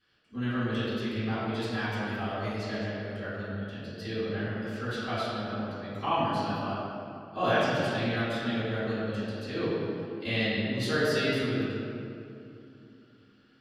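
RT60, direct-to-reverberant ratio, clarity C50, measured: 2.7 s, -16.0 dB, -3.5 dB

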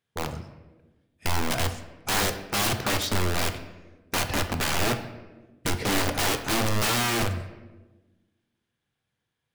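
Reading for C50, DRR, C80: 10.5 dB, 7.0 dB, 12.5 dB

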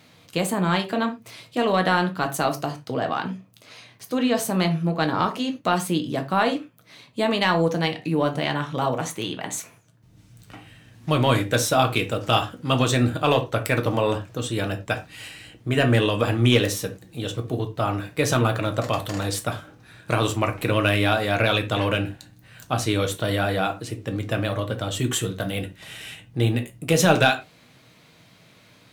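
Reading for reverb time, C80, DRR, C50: not exponential, 20.5 dB, 4.5 dB, 13.5 dB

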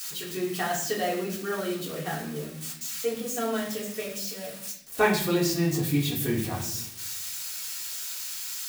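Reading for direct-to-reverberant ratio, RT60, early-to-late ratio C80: -6.0 dB, 0.70 s, 9.5 dB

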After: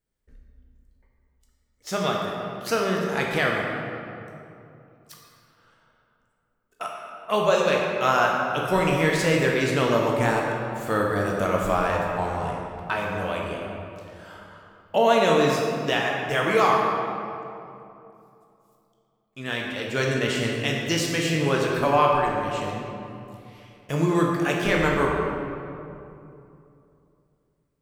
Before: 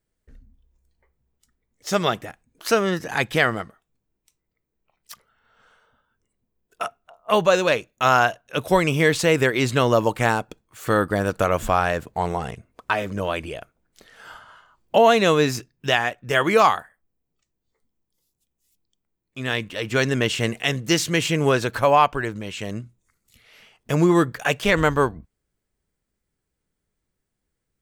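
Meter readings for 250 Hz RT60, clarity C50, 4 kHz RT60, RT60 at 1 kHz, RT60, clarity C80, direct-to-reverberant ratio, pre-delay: 3.2 s, 0.5 dB, 1.5 s, 2.6 s, 2.7 s, 1.5 dB, -1.5 dB, 12 ms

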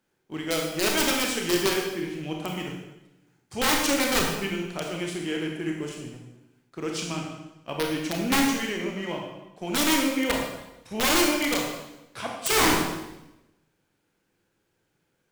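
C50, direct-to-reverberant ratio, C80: 2.5 dB, 0.5 dB, 5.0 dB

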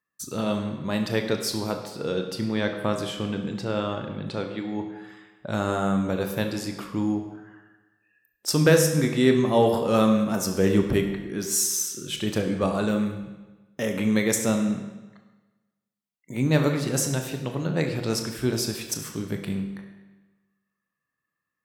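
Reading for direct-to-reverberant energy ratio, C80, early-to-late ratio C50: 4.5 dB, 8.5 dB, 7.0 dB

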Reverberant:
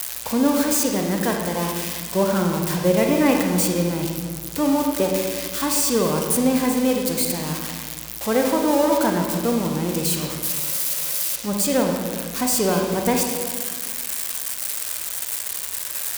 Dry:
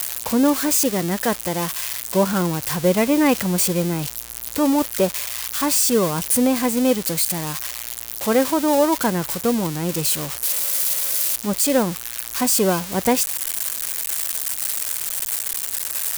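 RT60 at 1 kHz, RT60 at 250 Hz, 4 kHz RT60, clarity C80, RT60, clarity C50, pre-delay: 1.5 s, 2.0 s, 1.1 s, 4.5 dB, 1.6 s, 3.0 dB, 35 ms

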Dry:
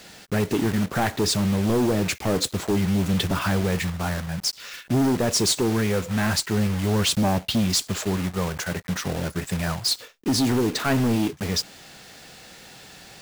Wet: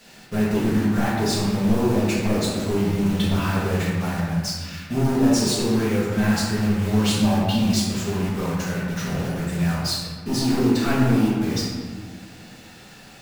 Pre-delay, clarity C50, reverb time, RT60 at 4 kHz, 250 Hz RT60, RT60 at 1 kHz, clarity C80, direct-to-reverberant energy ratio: 4 ms, -1.0 dB, 1.6 s, 0.90 s, 2.4 s, 1.6 s, 1.5 dB, -8.0 dB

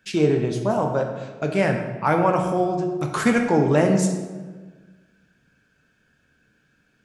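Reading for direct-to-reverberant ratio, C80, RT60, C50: 3.0 dB, 7.5 dB, 1.4 s, 6.0 dB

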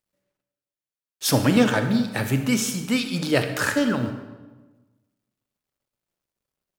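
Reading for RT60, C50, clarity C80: 1.2 s, 8.0 dB, 9.5 dB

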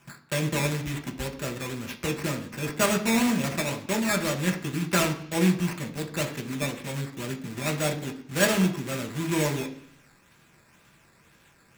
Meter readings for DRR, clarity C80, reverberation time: 3.5 dB, 15.5 dB, 0.65 s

